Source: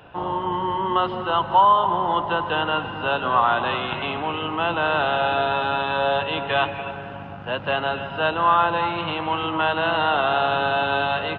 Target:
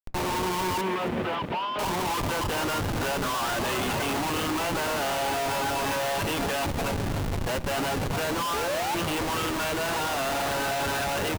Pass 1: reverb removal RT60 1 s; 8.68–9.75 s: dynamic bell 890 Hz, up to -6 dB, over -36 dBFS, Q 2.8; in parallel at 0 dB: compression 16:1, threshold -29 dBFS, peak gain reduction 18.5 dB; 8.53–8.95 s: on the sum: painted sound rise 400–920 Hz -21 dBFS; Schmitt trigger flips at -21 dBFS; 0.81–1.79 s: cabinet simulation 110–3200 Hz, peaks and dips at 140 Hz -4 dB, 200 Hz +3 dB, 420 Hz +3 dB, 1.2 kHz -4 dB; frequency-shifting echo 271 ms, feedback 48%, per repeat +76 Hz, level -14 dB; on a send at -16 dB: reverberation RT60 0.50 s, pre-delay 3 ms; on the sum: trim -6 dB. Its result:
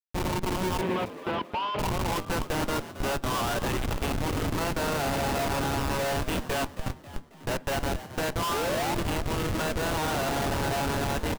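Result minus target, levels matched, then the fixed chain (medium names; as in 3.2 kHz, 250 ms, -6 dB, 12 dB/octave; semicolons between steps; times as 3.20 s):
Schmitt trigger: distortion +5 dB
reverb removal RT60 1 s; 8.68–9.75 s: dynamic bell 890 Hz, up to -6 dB, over -36 dBFS, Q 2.8; in parallel at 0 dB: compression 16:1, threshold -29 dBFS, peak gain reduction 18.5 dB; 8.53–8.95 s: on the sum: painted sound rise 400–920 Hz -21 dBFS; Schmitt trigger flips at -30.5 dBFS; 0.81–1.79 s: cabinet simulation 110–3200 Hz, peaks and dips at 140 Hz -4 dB, 200 Hz +3 dB, 420 Hz +3 dB, 1.2 kHz -4 dB; frequency-shifting echo 271 ms, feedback 48%, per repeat +76 Hz, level -14 dB; on a send at -16 dB: reverberation RT60 0.50 s, pre-delay 3 ms; on the sum: trim -6 dB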